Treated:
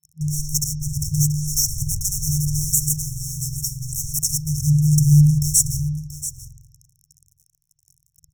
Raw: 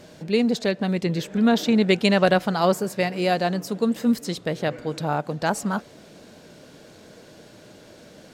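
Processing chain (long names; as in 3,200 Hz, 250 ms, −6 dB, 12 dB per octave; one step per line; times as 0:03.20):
fuzz pedal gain 32 dB, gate −38 dBFS
0:03.02–0:03.89: tuned comb filter 63 Hz, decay 0.29 s, harmonics all, mix 70%
on a send: single-tap delay 682 ms −12.5 dB
on the sum: spring reverb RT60 1.1 s, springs 47 ms, DRR −0.5 dB
brick-wall band-stop 160–5,400 Hz
level +6 dB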